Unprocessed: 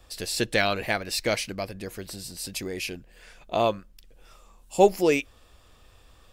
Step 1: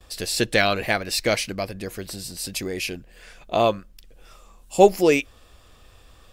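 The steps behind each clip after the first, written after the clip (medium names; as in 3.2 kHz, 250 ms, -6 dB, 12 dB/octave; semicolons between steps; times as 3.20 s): gate with hold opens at -49 dBFS; band-stop 910 Hz, Q 20; trim +4 dB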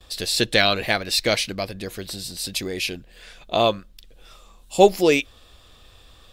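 peaking EQ 3.7 kHz +8 dB 0.56 oct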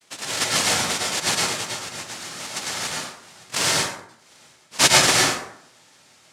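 noise-vocoded speech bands 1; plate-style reverb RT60 0.69 s, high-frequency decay 0.55×, pre-delay 90 ms, DRR -3 dB; trim -4.5 dB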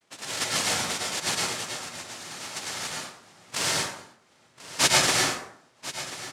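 delay 1037 ms -14.5 dB; tape noise reduction on one side only decoder only; trim -5.5 dB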